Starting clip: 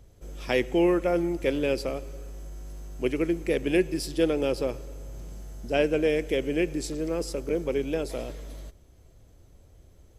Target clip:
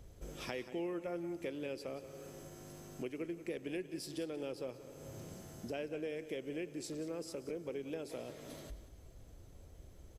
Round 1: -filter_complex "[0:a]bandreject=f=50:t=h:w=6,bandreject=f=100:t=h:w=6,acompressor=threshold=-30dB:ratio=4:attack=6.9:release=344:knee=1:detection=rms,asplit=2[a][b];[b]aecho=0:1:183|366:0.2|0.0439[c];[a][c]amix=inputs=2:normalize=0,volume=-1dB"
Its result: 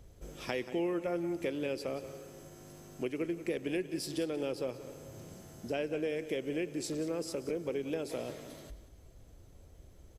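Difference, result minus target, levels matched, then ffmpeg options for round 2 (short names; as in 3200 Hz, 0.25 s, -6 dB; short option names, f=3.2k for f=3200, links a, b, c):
compressor: peak gain reduction -6.5 dB
-filter_complex "[0:a]bandreject=f=50:t=h:w=6,bandreject=f=100:t=h:w=6,acompressor=threshold=-38.5dB:ratio=4:attack=6.9:release=344:knee=1:detection=rms,asplit=2[a][b];[b]aecho=0:1:183|366:0.2|0.0439[c];[a][c]amix=inputs=2:normalize=0,volume=-1dB"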